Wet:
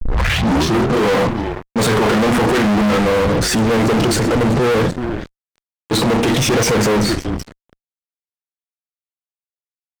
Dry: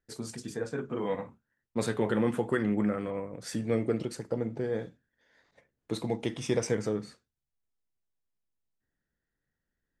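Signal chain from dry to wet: tape start at the beginning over 0.93 s; on a send: frequency-shifting echo 0.382 s, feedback 46%, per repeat -130 Hz, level -22 dB; on the sum: transient shaper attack -10 dB, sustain +4 dB; expander -54 dBFS; fuzz box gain 48 dB, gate -55 dBFS; high shelf 7500 Hz -7 dB

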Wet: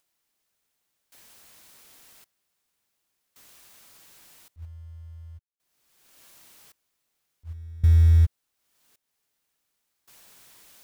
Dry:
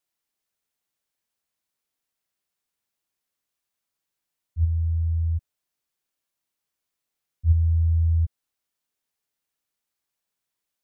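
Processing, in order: in parallel at -3 dB: short-mantissa float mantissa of 2-bit; on the sum: upward compressor, threshold -32 dBFS; step gate ".....xxxxx" 67 bpm -24 dB

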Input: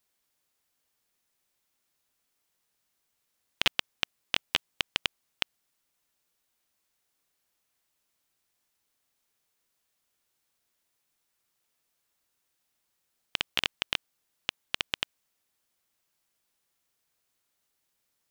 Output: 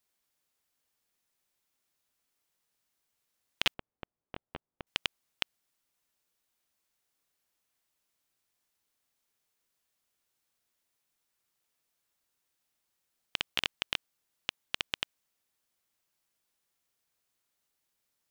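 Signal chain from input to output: 3.74–4.87 Bessel low-pass 680 Hz, order 2; gain -3 dB

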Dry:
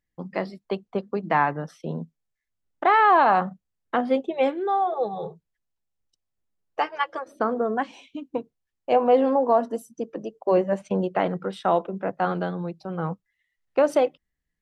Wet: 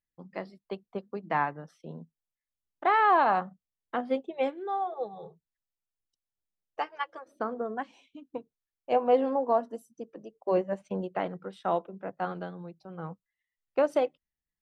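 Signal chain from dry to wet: upward expander 1.5:1, over -30 dBFS; gain -4 dB

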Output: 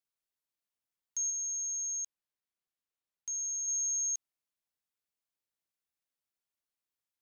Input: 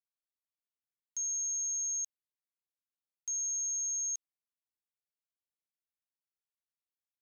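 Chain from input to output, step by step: 1.3–3.68 high shelf 6000 Hz -6 dB; gain +2 dB

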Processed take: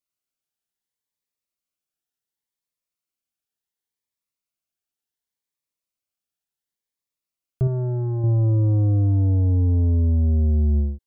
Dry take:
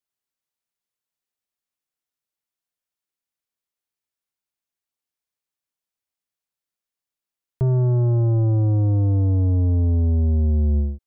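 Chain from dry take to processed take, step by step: 7.67–8.24 low shelf 340 Hz -7 dB; cascading phaser rising 0.69 Hz

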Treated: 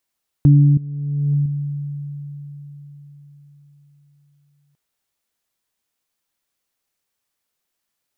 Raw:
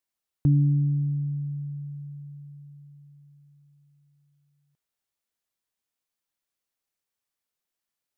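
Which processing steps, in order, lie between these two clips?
0.77–1.46 negative-ratio compressor -29 dBFS, ratio -0.5; gain +8.5 dB

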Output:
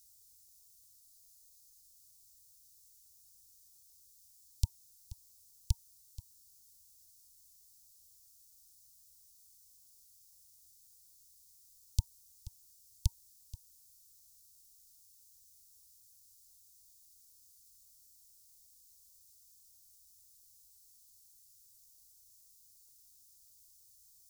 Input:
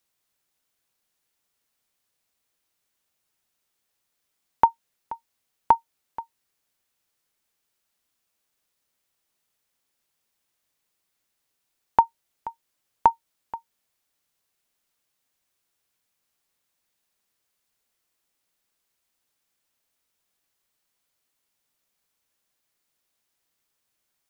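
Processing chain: inverse Chebyshev band-stop 300–1800 Hz, stop band 60 dB; spectral freeze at 1.03, 0.79 s; gain +16 dB

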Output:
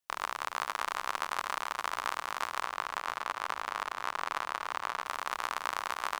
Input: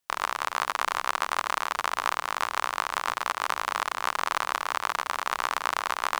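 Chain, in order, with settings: 2.63–5.05 bell 15000 Hz -6.5 dB 1.8 oct; echo 0.561 s -13 dB; gain -6.5 dB

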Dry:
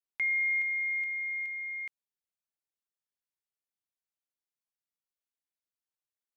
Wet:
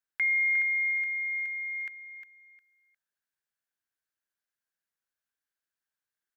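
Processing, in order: bell 1600 Hz +14 dB 0.38 oct; feedback echo 0.356 s, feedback 22%, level -9.5 dB

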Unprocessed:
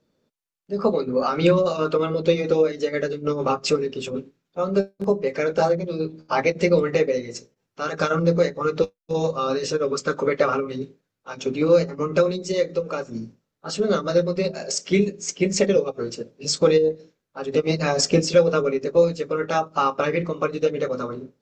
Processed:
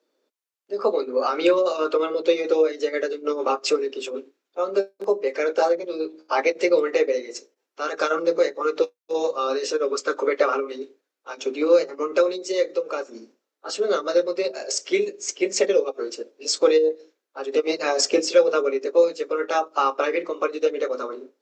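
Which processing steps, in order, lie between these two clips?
steep high-pass 300 Hz 36 dB/oct

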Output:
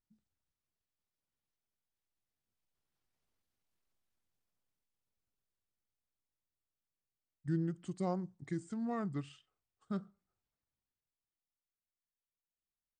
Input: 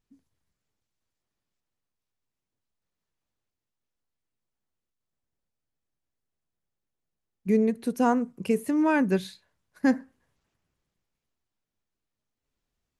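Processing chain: Doppler pass-by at 3.76, 9 m/s, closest 7.7 m; pitch shift -4.5 st; gain +1 dB

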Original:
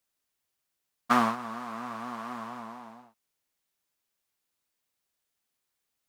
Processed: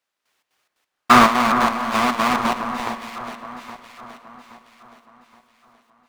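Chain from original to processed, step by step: half-waves squared off; dynamic EQ 1300 Hz, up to +4 dB, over -36 dBFS, Q 1.2; in parallel at -6 dB: Schmitt trigger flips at -36 dBFS; on the sum: step gate "...xx.xx.x" 178 bpm -12 dB; overdrive pedal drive 17 dB, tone 2600 Hz, clips at -7.5 dBFS; echo with dull and thin repeats by turns 0.411 s, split 1800 Hz, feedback 63%, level -8.5 dB; on a send at -12.5 dB: reverb RT60 3.9 s, pre-delay 37 ms; on the sum: gain +5 dB

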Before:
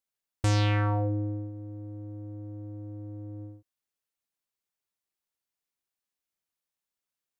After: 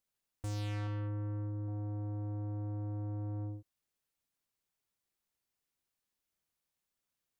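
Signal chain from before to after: low shelf 260 Hz +6.5 dB; compressor 6:1, threshold -30 dBFS, peak gain reduction 11.5 dB; soft clip -37 dBFS, distortion -10 dB; 0.87–1.68 notch comb 240 Hz; gain +1 dB

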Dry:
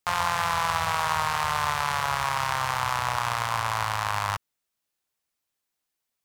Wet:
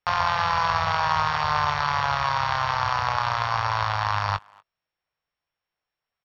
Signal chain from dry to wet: sample sorter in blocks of 8 samples; Bessel low-pass 2800 Hz, order 6; bell 260 Hz -10 dB 0.72 oct; notch 390 Hz, Q 12; doubler 20 ms -12.5 dB; speakerphone echo 0.24 s, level -25 dB; gain +4.5 dB

